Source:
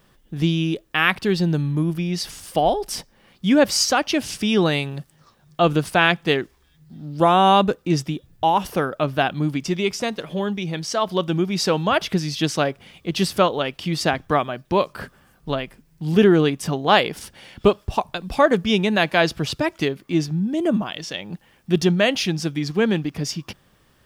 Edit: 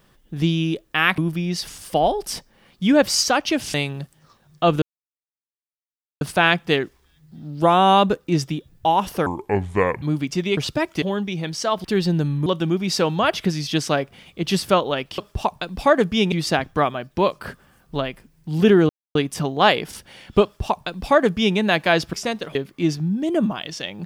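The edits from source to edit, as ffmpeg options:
-filter_complex "[0:a]asplit=15[s0][s1][s2][s3][s4][s5][s6][s7][s8][s9][s10][s11][s12][s13][s14];[s0]atrim=end=1.182[s15];[s1]atrim=start=1.798:end=4.362[s16];[s2]atrim=start=4.708:end=5.79,asetpts=PTS-STARTPTS,afade=t=out:st=1.078:d=0.004:c=hsin,apad=pad_dur=1.39[s17];[s3]atrim=start=5.79:end=8.844,asetpts=PTS-STARTPTS,afade=t=in:d=0.004:c=hsin[s18];[s4]atrim=start=8.84:end=9.35,asetpts=PTS-STARTPTS,asetrate=29547,aresample=44100[s19];[s5]atrim=start=9.346:end=9.902[s20];[s6]atrim=start=19.408:end=19.862[s21];[s7]atrim=start=10.318:end=11.142[s22];[s8]atrim=start=1.178:end=1.802[s23];[s9]atrim=start=11.138:end=13.862[s24];[s10]atrim=start=17.708:end=18.852[s25];[s11]atrim=start=13.858:end=16.43,asetpts=PTS-STARTPTS,afade=t=out:st=2.568:d=0.004:c=hsin,apad=pad_dur=0.26[s26];[s12]atrim=start=16.43:end=19.412,asetpts=PTS-STARTPTS,afade=t=in:d=0.004:c=hsin[s27];[s13]atrim=start=9.898:end=10.322[s28];[s14]atrim=start=19.858[s29];[s15][s16]acrossfade=d=0.004:c1=hsin:c2=hsin[s30];[s17][s18]concat=n=2:v=0:a=1[s31];[s30][s31]acrossfade=d=0.004:c1=hsin:c2=hsin[s32];[s32][s19]acrossfade=d=0.004:c1=hsin:c2=hsin[s33];[s33][s20]acrossfade=d=0.004:c1=hsin:c2=hsin[s34];[s34][s21]acrossfade=d=0.004:c1=hsin:c2=hsin[s35];[s35][s22]acrossfade=d=0.004:c1=hsin:c2=hsin[s36];[s36][s23]acrossfade=d=0.004:c1=hsin:c2=hsin[s37];[s37][s24]acrossfade=d=0.004:c1=hsin:c2=hsin[s38];[s38][s25]acrossfade=d=0.004:c1=hsin:c2=hsin[s39];[s26][s27]concat=n=2:v=0:a=1[s40];[s39][s40]acrossfade=d=0.004:c1=hsin:c2=hsin[s41];[s41][s28]acrossfade=d=0.004:c1=hsin:c2=hsin[s42];[s42][s29]acrossfade=d=0.004:c1=hsin:c2=hsin"

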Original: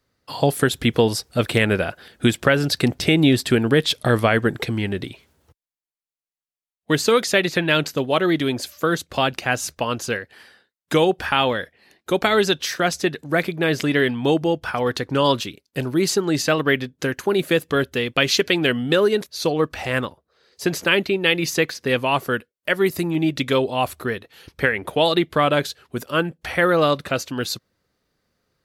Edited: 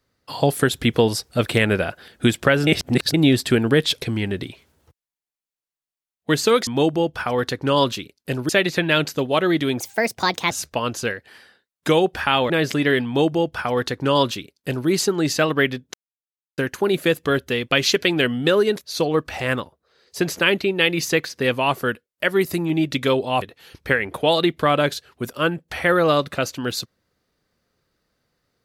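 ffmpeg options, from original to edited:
-filter_complex "[0:a]asplit=11[s0][s1][s2][s3][s4][s5][s6][s7][s8][s9][s10];[s0]atrim=end=2.672[s11];[s1]atrim=start=2.668:end=3.142,asetpts=PTS-STARTPTS,areverse[s12];[s2]atrim=start=3.138:end=4.022[s13];[s3]atrim=start=4.628:end=7.282[s14];[s4]atrim=start=14.148:end=15.972[s15];[s5]atrim=start=7.278:end=8.594[s16];[s6]atrim=start=8.59:end=9.56,asetpts=PTS-STARTPTS,asetrate=60417,aresample=44100,atrim=end_sample=31224,asetpts=PTS-STARTPTS[s17];[s7]atrim=start=9.556:end=11.552[s18];[s8]atrim=start=13.588:end=17.03,asetpts=PTS-STARTPTS,afade=t=out:st=3.438:d=0.004:c=hsin,apad=pad_dur=0.64[s19];[s9]atrim=start=17.03:end=23.872,asetpts=PTS-STARTPTS,afade=t=in:d=0.004:c=hsin[s20];[s10]atrim=start=24.148[s21];[s11][s12]acrossfade=d=0.004:c1=hsin:c2=hsin[s22];[s22][s13]acrossfade=d=0.004:c1=hsin:c2=hsin[s23];[s23][s14]acrossfade=d=0.004:c1=hsin:c2=hsin[s24];[s24][s15]acrossfade=d=0.004:c1=hsin:c2=hsin[s25];[s25][s16]acrossfade=d=0.004:c1=hsin:c2=hsin[s26];[s26][s17]acrossfade=d=0.004:c1=hsin:c2=hsin[s27];[s27][s18]acrossfade=d=0.004:c1=hsin:c2=hsin[s28];[s19][s20]concat=n=2:v=0:a=1[s29];[s28][s29]acrossfade=d=0.004:c1=hsin:c2=hsin[s30];[s30][s21]acrossfade=d=0.004:c1=hsin:c2=hsin"

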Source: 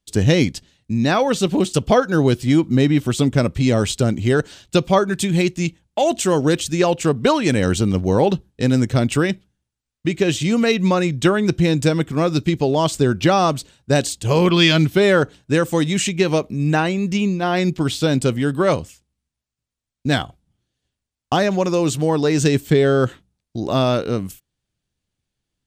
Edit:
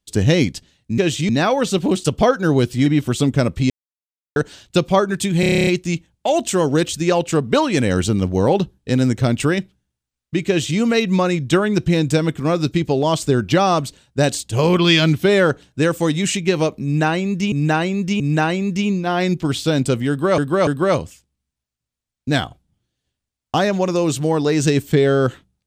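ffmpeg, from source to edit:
-filter_complex "[0:a]asplit=19[s0][s1][s2][s3][s4][s5][s6][s7][s8][s9][s10][s11][s12][s13][s14][s15][s16][s17][s18];[s0]atrim=end=0.982[s19];[s1]atrim=start=10.198:end=10.512[s20];[s2]atrim=start=0.978:end=2.552[s21];[s3]atrim=start=2.848:end=3.69,asetpts=PTS-STARTPTS,afade=t=out:st=0.838:d=0.004:c=hsin[s22];[s4]atrim=start=3.69:end=4.35,asetpts=PTS-STARTPTS,volume=0[s23];[s5]atrim=start=4.35:end=5.422,asetpts=PTS-STARTPTS,afade=t=in:d=0.004:c=hsin[s24];[s6]atrim=start=5.388:end=5.422[s25];[s7]atrim=start=5.388:end=5.422[s26];[s8]atrim=start=5.388:end=5.422[s27];[s9]atrim=start=5.388:end=5.422[s28];[s10]atrim=start=5.388:end=5.422[s29];[s11]atrim=start=5.388:end=5.422[s30];[s12]atrim=start=5.388:end=5.422[s31];[s13]atrim=start=5.388:end=5.422[s32];[s14]atrim=start=5.388:end=17.242[s33];[s15]atrim=start=16.558:end=17.242[s34];[s16]atrim=start=16.558:end=18.742[s35];[s17]atrim=start=18.448:end=18.742[s36];[s18]atrim=start=18.448[s37];[s19][s20]acrossfade=d=0.004:c1=hsin:c2=hsin[s38];[s38][s21]acrossfade=d=0.004:c1=hsin:c2=hsin[s39];[s22][s23][s24]concat=n=3:v=0:a=1[s40];[s39][s40]acrossfade=d=0.004:c1=hsin:c2=hsin[s41];[s41][s25]acrossfade=d=0.004:c1=hsin:c2=hsin[s42];[s42][s26]acrossfade=d=0.004:c1=hsin:c2=hsin[s43];[s43][s27]acrossfade=d=0.004:c1=hsin:c2=hsin[s44];[s44][s28]acrossfade=d=0.004:c1=hsin:c2=hsin[s45];[s45][s29]acrossfade=d=0.004:c1=hsin:c2=hsin[s46];[s46][s30]acrossfade=d=0.004:c1=hsin:c2=hsin[s47];[s47][s31]acrossfade=d=0.004:c1=hsin:c2=hsin[s48];[s48][s32]acrossfade=d=0.004:c1=hsin:c2=hsin[s49];[s49][s33]acrossfade=d=0.004:c1=hsin:c2=hsin[s50];[s50][s34]acrossfade=d=0.004:c1=hsin:c2=hsin[s51];[s51][s35]acrossfade=d=0.004:c1=hsin:c2=hsin[s52];[s52][s36]acrossfade=d=0.004:c1=hsin:c2=hsin[s53];[s53][s37]acrossfade=d=0.004:c1=hsin:c2=hsin"

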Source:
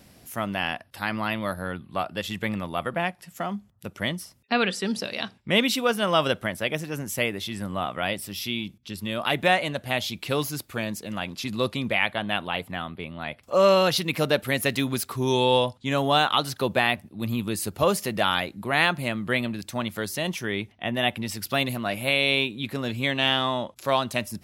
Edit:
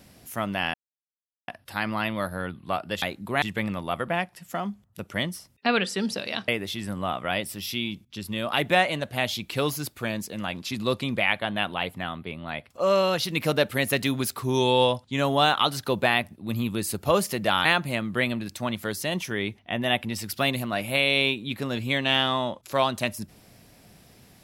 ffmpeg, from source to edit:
-filter_complex "[0:a]asplit=8[s0][s1][s2][s3][s4][s5][s6][s7];[s0]atrim=end=0.74,asetpts=PTS-STARTPTS,afade=t=out:st=0.736:d=0.004:c=hsin,apad=pad_dur=0.74[s8];[s1]atrim=start=0.74:end=2.282,asetpts=PTS-STARTPTS,afade=t=in:d=0.004:c=hsin[s9];[s2]atrim=start=18.378:end=18.782[s10];[s3]atrim=start=2.278:end=5.342[s11];[s4]atrim=start=7.208:end=13.442[s12];[s5]atrim=start=13.438:end=14.032,asetpts=PTS-STARTPTS,volume=0.668[s13];[s6]atrim=start=14.028:end=18.382[s14];[s7]atrim=start=18.778[s15];[s8][s9]concat=n=2:v=0:a=1[s16];[s16][s10]acrossfade=d=0.004:c1=hsin:c2=hsin[s17];[s17][s11]acrossfade=d=0.004:c1=hsin:c2=hsin[s18];[s18][s12]acrossfade=d=0.004:c1=hsin:c2=hsin[s19];[s19][s13]acrossfade=d=0.004:c1=hsin:c2=hsin[s20];[s20][s14]acrossfade=d=0.004:c1=hsin:c2=hsin[s21];[s21][s15]acrossfade=d=0.004:c1=hsin:c2=hsin"

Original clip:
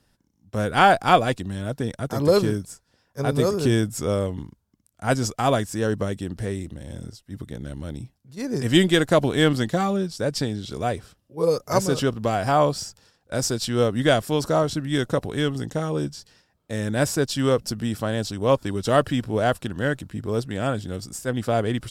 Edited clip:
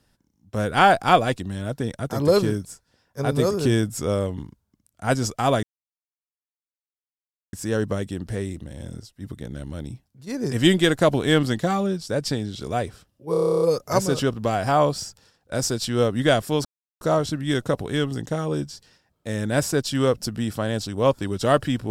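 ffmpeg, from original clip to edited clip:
-filter_complex "[0:a]asplit=13[s0][s1][s2][s3][s4][s5][s6][s7][s8][s9][s10][s11][s12];[s0]atrim=end=5.63,asetpts=PTS-STARTPTS,afade=t=out:st=5.626:d=0.004:c=hsin,apad=pad_dur=1.9[s13];[s1]atrim=start=5.63:end=11.442,asetpts=PTS-STARTPTS,afade=t=in:d=0.004:c=hsin[s14];[s2]atrim=start=11.408:end=11.442[s15];[s3]atrim=start=11.408:end=11.442[s16];[s4]atrim=start=11.408:end=11.442[s17];[s5]atrim=start=11.408:end=11.442[s18];[s6]atrim=start=11.408:end=11.442[s19];[s7]atrim=start=11.408:end=11.442[s20];[s8]atrim=start=11.408:end=11.442[s21];[s9]atrim=start=11.408:end=11.442[s22];[s10]atrim=start=11.408:end=11.442[s23];[s11]atrim=start=11.408:end=14.45,asetpts=PTS-STARTPTS,afade=t=out:st=3.038:d=0.004:c=hsin,apad=pad_dur=0.36[s24];[s12]atrim=start=14.45,asetpts=PTS-STARTPTS,afade=t=in:d=0.004:c=hsin[s25];[s13][s14]concat=n=2:v=0:a=1[s26];[s26][s15]acrossfade=d=0.004:c1=hsin:c2=hsin[s27];[s27][s16]acrossfade=d=0.004:c1=hsin:c2=hsin[s28];[s28][s17]acrossfade=d=0.004:c1=hsin:c2=hsin[s29];[s29][s18]acrossfade=d=0.004:c1=hsin:c2=hsin[s30];[s30][s19]acrossfade=d=0.004:c1=hsin:c2=hsin[s31];[s31][s20]acrossfade=d=0.004:c1=hsin:c2=hsin[s32];[s32][s21]acrossfade=d=0.004:c1=hsin:c2=hsin[s33];[s33][s22]acrossfade=d=0.004:c1=hsin:c2=hsin[s34];[s34][s23]acrossfade=d=0.004:c1=hsin:c2=hsin[s35];[s24][s25]concat=n=2:v=0:a=1[s36];[s35][s36]acrossfade=d=0.004:c1=hsin:c2=hsin"

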